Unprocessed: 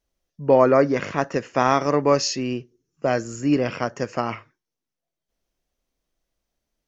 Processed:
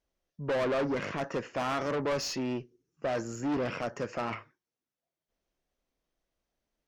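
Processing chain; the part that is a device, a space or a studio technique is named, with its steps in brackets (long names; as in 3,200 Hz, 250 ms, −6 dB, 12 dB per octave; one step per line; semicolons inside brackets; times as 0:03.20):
tube preamp driven hard (tube saturation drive 25 dB, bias 0.25; low-shelf EQ 180 Hz −4.5 dB; high-shelf EQ 4,700 Hz −9 dB)
level −1 dB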